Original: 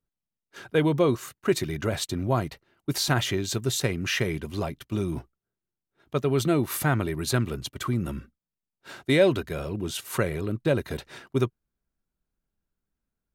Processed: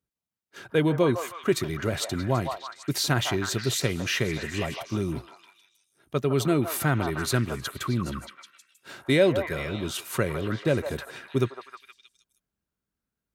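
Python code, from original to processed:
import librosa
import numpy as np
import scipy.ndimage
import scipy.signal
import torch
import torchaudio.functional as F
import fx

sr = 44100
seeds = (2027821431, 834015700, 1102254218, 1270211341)

p1 = scipy.signal.sosfilt(scipy.signal.butter(2, 60.0, 'highpass', fs=sr, output='sos'), x)
p2 = fx.peak_eq(p1, sr, hz=850.0, db=-2.5, octaves=0.77)
y = p2 + fx.echo_stepped(p2, sr, ms=157, hz=870.0, octaves=0.7, feedback_pct=70, wet_db=-2.0, dry=0)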